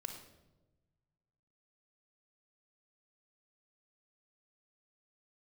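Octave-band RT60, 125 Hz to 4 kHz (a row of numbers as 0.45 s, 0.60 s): 2.1 s, 1.5 s, 1.3 s, 0.90 s, 0.75 s, 0.70 s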